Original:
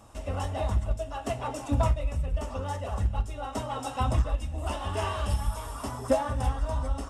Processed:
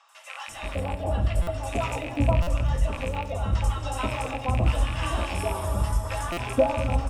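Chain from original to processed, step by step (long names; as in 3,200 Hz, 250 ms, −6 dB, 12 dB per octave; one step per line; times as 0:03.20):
loose part that buzzes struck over −29 dBFS, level −26 dBFS
0:00.67–0:01.58: thirty-one-band graphic EQ 1,000 Hz −6 dB, 2,500 Hz −4 dB, 6,300 Hz −12 dB
three-band delay without the direct sound mids, highs, lows 90/480 ms, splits 1,000/5,400 Hz
rectangular room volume 3,300 cubic metres, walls mixed, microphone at 0.76 metres
buffer that repeats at 0:01.42/0:02.42/0:06.32, samples 256, times 8
level +4 dB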